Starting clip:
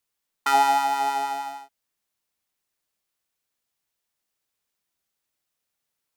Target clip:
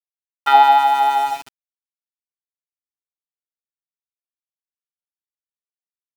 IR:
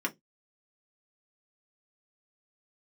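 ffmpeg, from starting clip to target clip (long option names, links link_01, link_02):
-af "highpass=370,equalizer=frequency=800:width_type=q:width=4:gain=6,equalizer=frequency=1500:width_type=q:width=4:gain=3,equalizer=frequency=3500:width_type=q:width=4:gain=9,lowpass=frequency=3600:width=0.5412,lowpass=frequency=3600:width=1.3066,agate=range=-11dB:threshold=-23dB:ratio=16:detection=peak,aeval=exprs='val(0)*gte(abs(val(0)),0.0224)':channel_layout=same,volume=3.5dB"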